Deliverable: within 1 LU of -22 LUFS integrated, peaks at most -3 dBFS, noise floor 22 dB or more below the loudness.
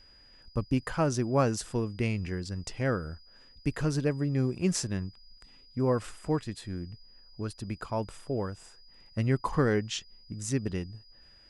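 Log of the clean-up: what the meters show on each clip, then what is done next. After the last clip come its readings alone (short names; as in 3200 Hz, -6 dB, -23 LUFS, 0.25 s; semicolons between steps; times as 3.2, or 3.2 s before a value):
steady tone 4900 Hz; tone level -56 dBFS; loudness -31.5 LUFS; peak -13.0 dBFS; loudness target -22.0 LUFS
-> notch 4900 Hz, Q 30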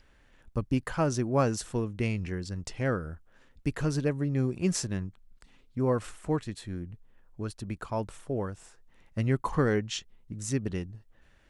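steady tone none; loudness -31.5 LUFS; peak -13.0 dBFS; loudness target -22.0 LUFS
-> gain +9.5 dB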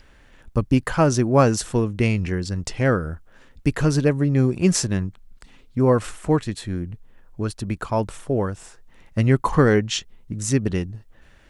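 loudness -22.0 LUFS; peak -3.5 dBFS; noise floor -52 dBFS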